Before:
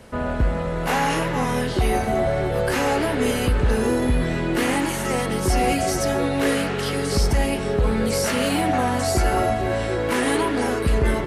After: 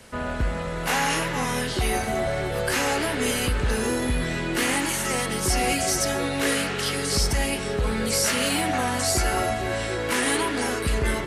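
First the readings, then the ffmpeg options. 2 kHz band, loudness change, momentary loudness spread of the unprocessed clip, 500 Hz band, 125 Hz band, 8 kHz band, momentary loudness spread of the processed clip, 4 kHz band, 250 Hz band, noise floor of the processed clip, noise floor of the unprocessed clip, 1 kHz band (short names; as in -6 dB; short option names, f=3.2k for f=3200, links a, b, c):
+0.5 dB, -2.5 dB, 3 LU, -5.0 dB, -5.0 dB, +4.5 dB, 4 LU, +2.5 dB, -5.0 dB, -29 dBFS, -26 dBFS, -3.5 dB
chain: -filter_complex "[0:a]equalizer=f=7.7k:w=0.64:g=4,acrossover=split=630|1200[a][b][c];[c]acontrast=49[d];[a][b][d]amix=inputs=3:normalize=0,volume=-5dB"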